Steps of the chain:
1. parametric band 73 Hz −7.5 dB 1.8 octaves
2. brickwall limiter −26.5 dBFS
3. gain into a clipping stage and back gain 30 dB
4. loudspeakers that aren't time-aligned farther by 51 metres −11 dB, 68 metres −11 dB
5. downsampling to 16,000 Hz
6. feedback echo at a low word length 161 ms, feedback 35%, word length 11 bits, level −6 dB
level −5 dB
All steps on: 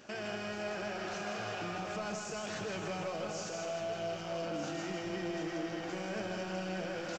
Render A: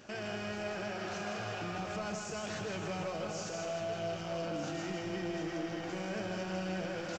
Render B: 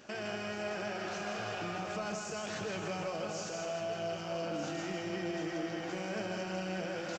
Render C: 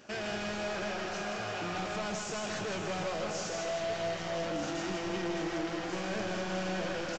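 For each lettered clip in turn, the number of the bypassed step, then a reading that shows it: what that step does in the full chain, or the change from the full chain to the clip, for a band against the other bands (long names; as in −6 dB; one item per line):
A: 1, 125 Hz band +3.0 dB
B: 3, distortion level −19 dB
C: 2, average gain reduction 8.0 dB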